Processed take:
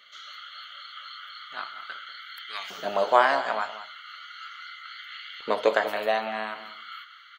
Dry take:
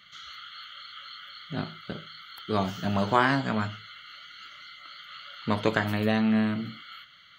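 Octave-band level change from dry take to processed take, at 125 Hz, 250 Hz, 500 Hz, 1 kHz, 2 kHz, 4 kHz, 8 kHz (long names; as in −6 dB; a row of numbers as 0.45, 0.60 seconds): below −20 dB, −15.5 dB, +4.5 dB, +4.0 dB, +1.5 dB, +1.0 dB, can't be measured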